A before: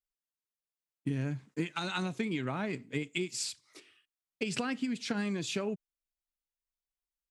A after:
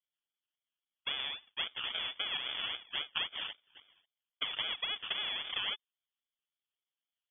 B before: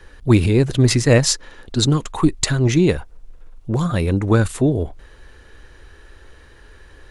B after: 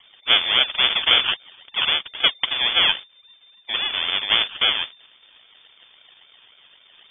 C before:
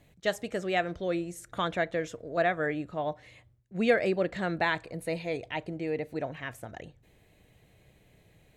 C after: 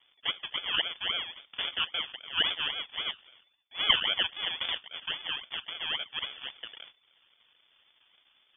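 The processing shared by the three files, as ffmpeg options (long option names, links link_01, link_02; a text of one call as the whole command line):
ffmpeg -i in.wav -af "acrusher=samples=40:mix=1:aa=0.000001:lfo=1:lforange=24:lforate=3.7,aemphasis=mode=production:type=bsi,lowpass=frequency=3100:width_type=q:width=0.5098,lowpass=frequency=3100:width_type=q:width=0.6013,lowpass=frequency=3100:width_type=q:width=0.9,lowpass=frequency=3100:width_type=q:width=2.563,afreqshift=-3600" out.wav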